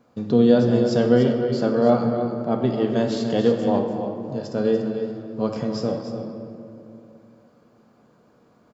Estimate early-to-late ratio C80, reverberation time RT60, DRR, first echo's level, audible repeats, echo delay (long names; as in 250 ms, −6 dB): 5.0 dB, 2.7 s, 2.0 dB, −10.0 dB, 1, 292 ms